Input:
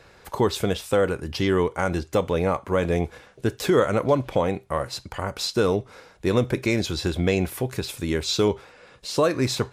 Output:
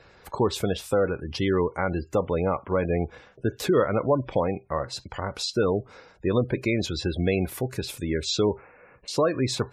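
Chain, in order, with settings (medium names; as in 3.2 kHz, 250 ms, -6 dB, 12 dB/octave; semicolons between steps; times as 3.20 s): 8.49–9.08 s: Chebyshev low-pass 2.4 kHz, order 4; spectral gate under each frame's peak -25 dB strong; trim -1.5 dB; MP3 80 kbps 32 kHz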